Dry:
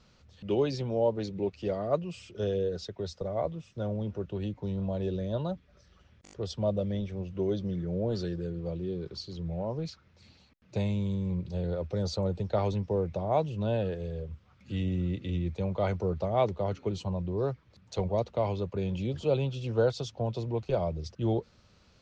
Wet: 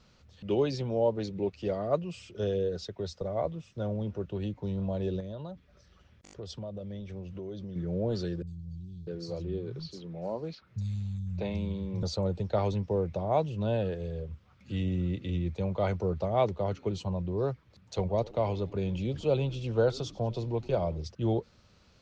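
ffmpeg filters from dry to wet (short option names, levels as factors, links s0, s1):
-filter_complex "[0:a]asettb=1/sr,asplit=3[s0][s1][s2];[s0]atrim=end=5.204[s3];[s1]atrim=start=5.2:end=7.76,asetpts=PTS-STARTPTS,afade=t=in:d=0.004:c=qsin,afade=t=out:st=2.556:d=0.004:c=qsin,acompressor=threshold=0.0141:ratio=5:attack=3.2:release=140:knee=1:detection=peak[s4];[s2]atrim=start=7.756[s5];[s3][s4]acrossfade=d=0.004:c1=hsin:c2=qsin[s6];[s6][s5]acrossfade=d=0.004:c1=qsin:c2=hsin,asettb=1/sr,asplit=3[s7][s8][s9];[s7]atrim=end=8.424[s10];[s8]atrim=start=8.42:end=12.03,asetpts=PTS-STARTPTS,afade=t=in:d=0.004:c=qsin,afade=t=out:st=3.606:d=0.004:c=qsin,acrossover=split=160|4700[s11][s12][s13];[s13]adelay=50[s14];[s12]adelay=650[s15];[s11][s15][s14]amix=inputs=3:normalize=0,atrim=end_sample=159201[s16];[s9]atrim=start=12.026[s17];[s10][s16]acrossfade=d=0.004:c1=hsin:c2=qsin[s18];[s18][s17]acrossfade=d=0.004:c1=qsin:c2=hsin,asettb=1/sr,asplit=3[s19][s20][s21];[s19]atrim=end=18.014[s22];[s20]atrim=start=18.01:end=21.02,asetpts=PTS-STARTPTS,afade=t=in:d=0.004:c=qsin,afade=t=out:st=3.006:d=0.004:c=qsin,asplit=6[s23][s24][s25][s26][s27][s28];[s24]adelay=95,afreqshift=-100,volume=0.0891[s29];[s25]adelay=190,afreqshift=-200,volume=0.0525[s30];[s26]adelay=285,afreqshift=-300,volume=0.0309[s31];[s27]adelay=380,afreqshift=-400,volume=0.0184[s32];[s28]adelay=475,afreqshift=-500,volume=0.0108[s33];[s23][s29][s30][s31][s32][s33]amix=inputs=6:normalize=0,atrim=end_sample=132741[s34];[s21]atrim=start=21.016[s35];[s22][s34]acrossfade=d=0.004:c1=hsin:c2=qsin[s36];[s36][s35]acrossfade=d=0.004:c1=qsin:c2=hsin"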